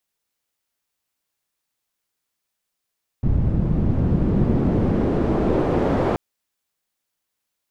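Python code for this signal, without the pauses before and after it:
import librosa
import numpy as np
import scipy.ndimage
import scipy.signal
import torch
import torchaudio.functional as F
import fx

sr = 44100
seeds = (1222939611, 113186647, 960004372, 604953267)

y = fx.riser_noise(sr, seeds[0], length_s=2.93, colour='white', kind='lowpass', start_hz=120.0, end_hz=580.0, q=1.0, swell_db=-8.5, law='exponential')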